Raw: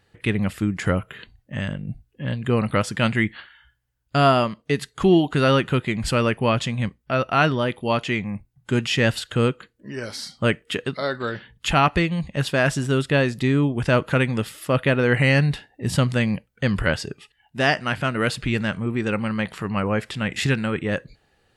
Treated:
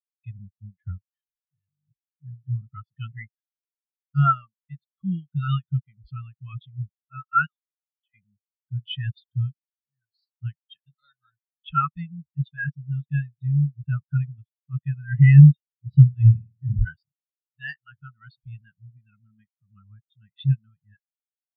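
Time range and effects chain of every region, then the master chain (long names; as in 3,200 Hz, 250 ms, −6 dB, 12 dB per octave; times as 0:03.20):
0:00.98–0:01.91: high-shelf EQ 4,400 Hz +10 dB + downward compressor 4 to 1, threshold −40 dBFS + leveller curve on the samples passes 2
0:07.46–0:08.14: four-pole ladder high-pass 490 Hz, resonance 25% + compressor whose output falls as the input rises −38 dBFS
0:16.09–0:16.85: low-shelf EQ 82 Hz +8.5 dB + transient designer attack −5 dB, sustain +2 dB + flutter between parallel walls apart 9 metres, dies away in 1.2 s
whole clip: drawn EQ curve 150 Hz 0 dB, 410 Hz −19 dB, 1,300 Hz +2 dB, 2,300 Hz +2 dB, 3,700 Hz +11 dB, 8,800 Hz −3 dB; every bin expanded away from the loudest bin 4 to 1; level +1.5 dB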